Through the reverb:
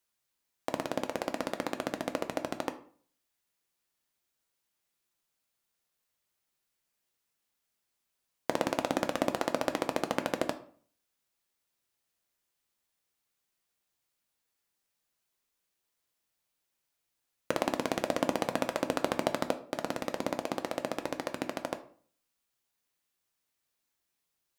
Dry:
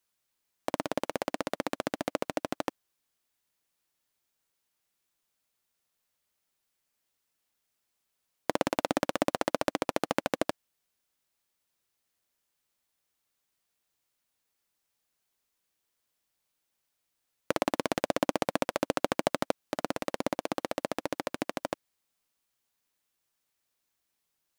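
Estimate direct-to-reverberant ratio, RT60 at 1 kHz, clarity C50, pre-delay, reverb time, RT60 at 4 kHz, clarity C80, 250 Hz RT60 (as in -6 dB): 7.5 dB, 0.45 s, 14.0 dB, 5 ms, 0.45 s, 0.35 s, 18.0 dB, 0.55 s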